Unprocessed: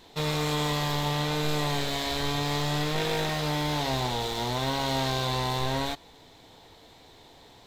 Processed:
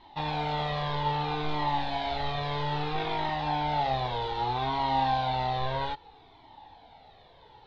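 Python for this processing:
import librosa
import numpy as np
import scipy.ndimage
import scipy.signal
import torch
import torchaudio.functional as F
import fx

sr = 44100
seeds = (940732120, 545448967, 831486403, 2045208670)

y = scipy.signal.sosfilt(scipy.signal.cheby2(4, 60, 11000.0, 'lowpass', fs=sr, output='sos'), x)
y = fx.peak_eq(y, sr, hz=830.0, db=12.5, octaves=0.39)
y = fx.comb_cascade(y, sr, direction='falling', hz=0.62)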